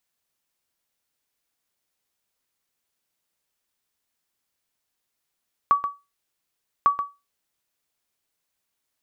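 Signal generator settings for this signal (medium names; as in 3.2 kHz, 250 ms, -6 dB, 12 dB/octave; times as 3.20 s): sonar ping 1.14 kHz, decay 0.24 s, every 1.15 s, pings 2, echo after 0.13 s, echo -9.5 dB -9.5 dBFS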